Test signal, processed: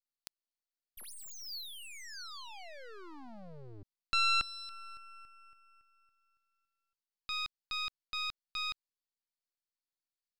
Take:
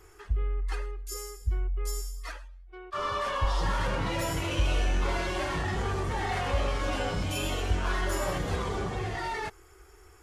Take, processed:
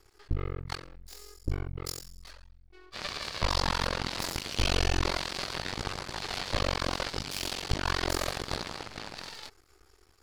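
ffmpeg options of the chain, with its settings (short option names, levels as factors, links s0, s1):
-af "aeval=exprs='max(val(0),0)':c=same,aeval=exprs='0.15*(cos(1*acos(clip(val(0)/0.15,-1,1)))-cos(1*PI/2))+0.0106*(cos(5*acos(clip(val(0)/0.15,-1,1)))-cos(5*PI/2))+0.0422*(cos(7*acos(clip(val(0)/0.15,-1,1)))-cos(7*PI/2))+0.000944*(cos(8*acos(clip(val(0)/0.15,-1,1)))-cos(8*PI/2))':c=same,equalizer=f=4500:t=o:w=0.52:g=10.5"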